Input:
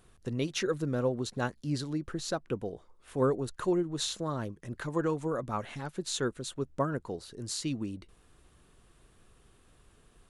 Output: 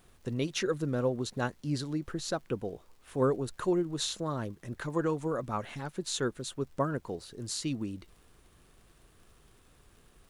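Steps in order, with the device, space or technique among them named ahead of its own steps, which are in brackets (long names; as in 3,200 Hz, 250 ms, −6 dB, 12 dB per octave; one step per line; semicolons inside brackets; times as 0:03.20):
vinyl LP (surface crackle 77 per second −52 dBFS; pink noise bed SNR 36 dB)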